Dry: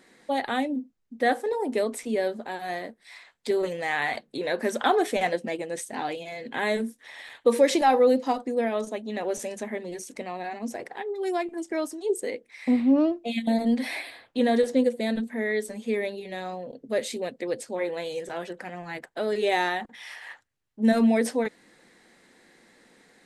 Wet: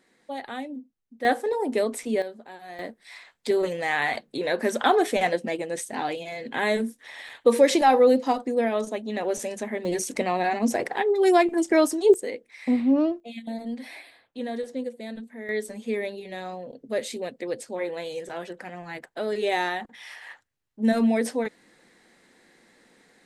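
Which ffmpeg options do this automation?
ffmpeg -i in.wav -af "asetnsamples=nb_out_samples=441:pad=0,asendcmd='1.25 volume volume 1.5dB;2.22 volume volume -9dB;2.79 volume volume 2dB;9.85 volume volume 9.5dB;12.14 volume volume -0.5dB;13.2 volume volume -9.5dB;15.49 volume volume -1dB',volume=-7.5dB" out.wav

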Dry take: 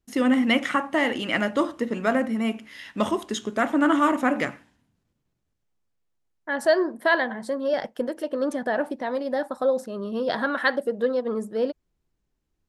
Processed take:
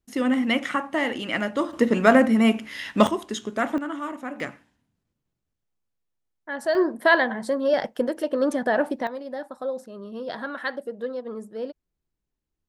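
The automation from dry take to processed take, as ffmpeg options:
ffmpeg -i in.wav -af "asetnsamples=nb_out_samples=441:pad=0,asendcmd='1.73 volume volume 7dB;3.07 volume volume -1.5dB;3.78 volume volume -11.5dB;4.4 volume volume -4.5dB;6.75 volume volume 3dB;9.07 volume volume -7dB',volume=-2dB" out.wav

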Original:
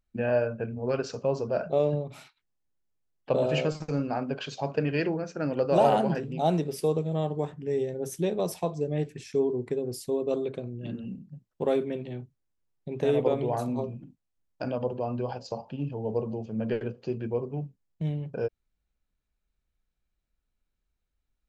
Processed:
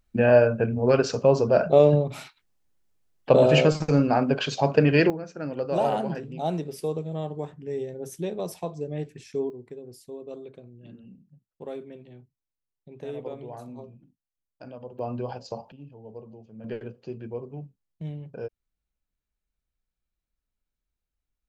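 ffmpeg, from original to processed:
ffmpeg -i in.wav -af "asetnsamples=nb_out_samples=441:pad=0,asendcmd='5.1 volume volume -3dB;9.5 volume volume -11dB;14.99 volume volume -0.5dB;15.72 volume volume -13dB;16.64 volume volume -5dB',volume=8.5dB" out.wav

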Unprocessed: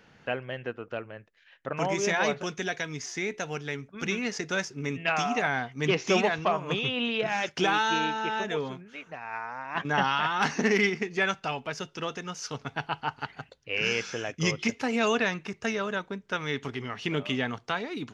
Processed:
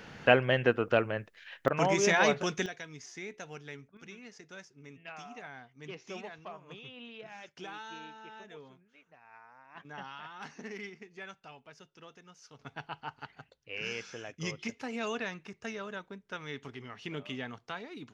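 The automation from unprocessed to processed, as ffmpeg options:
ffmpeg -i in.wav -af "asetnsamples=nb_out_samples=441:pad=0,asendcmd='1.68 volume volume 1dB;2.66 volume volume -11dB;3.97 volume volume -19dB;12.59 volume volume -10dB',volume=9dB" out.wav

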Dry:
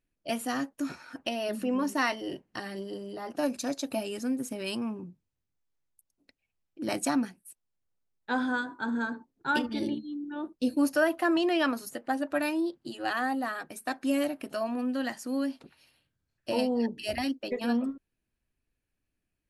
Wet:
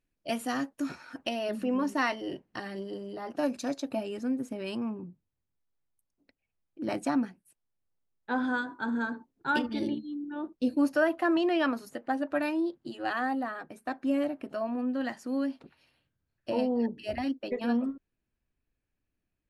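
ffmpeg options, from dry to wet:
ffmpeg -i in.wav -af "asetnsamples=nb_out_samples=441:pad=0,asendcmd='1.39 lowpass f 3700;3.8 lowpass f 1800;8.44 lowpass f 4600;10.22 lowpass f 2600;13.43 lowpass f 1300;15.01 lowpass f 2500;16.5 lowpass f 1400;17.27 lowpass f 2500',lowpass=frequency=7300:poles=1" out.wav

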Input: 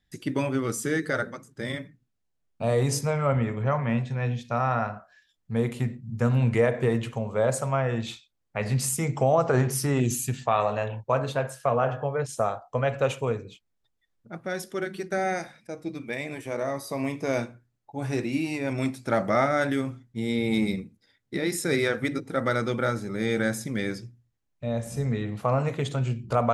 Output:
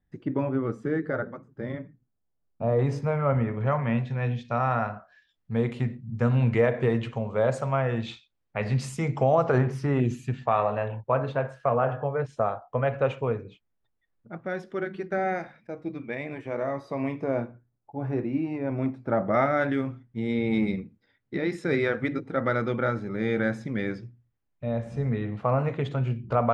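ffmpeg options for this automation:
ffmpeg -i in.wav -af "asetnsamples=nb_out_samples=441:pad=0,asendcmd='2.79 lowpass f 2000;3.61 lowpass f 3800;9.58 lowpass f 2200;17.24 lowpass f 1200;19.34 lowpass f 2500',lowpass=1200" out.wav

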